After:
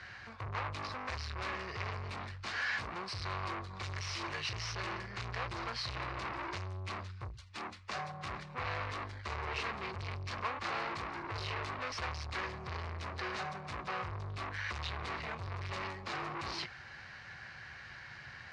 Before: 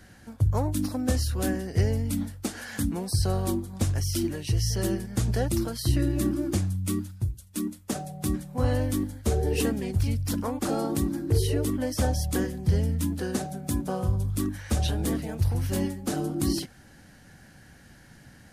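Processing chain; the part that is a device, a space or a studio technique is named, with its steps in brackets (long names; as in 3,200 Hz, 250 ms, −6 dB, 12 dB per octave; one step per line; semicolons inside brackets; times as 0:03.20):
0:03.83–0:04.72: high-shelf EQ 3,700 Hz +8.5 dB
scooped metal amplifier (tube saturation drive 38 dB, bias 0.35; loudspeaker in its box 110–3,900 Hz, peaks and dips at 180 Hz −6 dB, 360 Hz +9 dB, 1,100 Hz +8 dB, 2,200 Hz +3 dB, 3,300 Hz −7 dB; guitar amp tone stack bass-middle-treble 10-0-10)
level +14 dB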